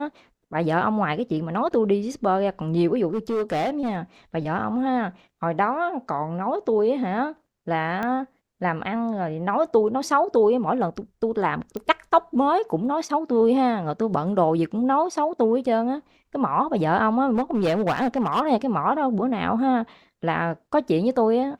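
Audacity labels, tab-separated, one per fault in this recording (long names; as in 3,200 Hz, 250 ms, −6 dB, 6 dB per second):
3.130000	3.970000	clipping −20.5 dBFS
8.030000	8.030000	click −16 dBFS
11.770000	11.770000	click −18 dBFS
17.340000	18.410000	clipping −17.5 dBFS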